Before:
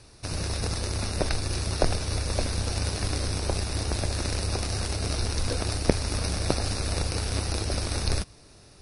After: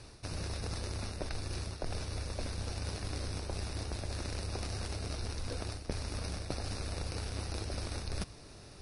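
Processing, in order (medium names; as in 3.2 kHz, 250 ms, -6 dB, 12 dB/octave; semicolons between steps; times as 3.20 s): treble shelf 6.4 kHz -5.5 dB; reverse; compression 6:1, threshold -36 dBFS, peak gain reduction 21 dB; reverse; trim +1 dB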